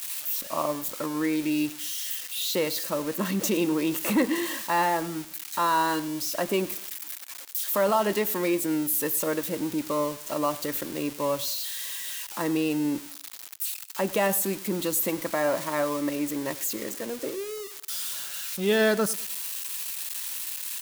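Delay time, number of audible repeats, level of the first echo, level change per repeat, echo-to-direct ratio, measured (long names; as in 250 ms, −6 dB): 100 ms, 2, −19.0 dB, −9.5 dB, −18.5 dB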